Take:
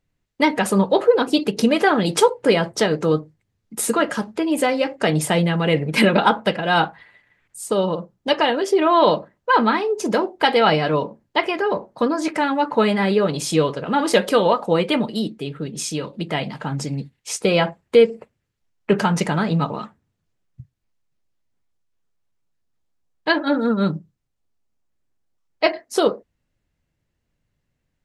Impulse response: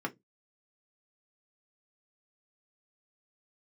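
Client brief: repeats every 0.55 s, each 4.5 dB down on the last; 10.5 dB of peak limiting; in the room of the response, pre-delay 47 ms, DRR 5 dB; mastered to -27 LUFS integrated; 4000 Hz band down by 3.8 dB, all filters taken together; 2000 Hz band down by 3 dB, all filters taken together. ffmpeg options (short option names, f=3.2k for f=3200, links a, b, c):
-filter_complex "[0:a]equalizer=f=2k:t=o:g=-3,equalizer=f=4k:t=o:g=-4,alimiter=limit=-13.5dB:level=0:latency=1,aecho=1:1:550|1100|1650|2200|2750|3300|3850|4400|4950:0.596|0.357|0.214|0.129|0.0772|0.0463|0.0278|0.0167|0.01,asplit=2[a][b];[1:a]atrim=start_sample=2205,adelay=47[c];[b][c]afir=irnorm=-1:irlink=0,volume=-9.5dB[d];[a][d]amix=inputs=2:normalize=0,volume=-6dB"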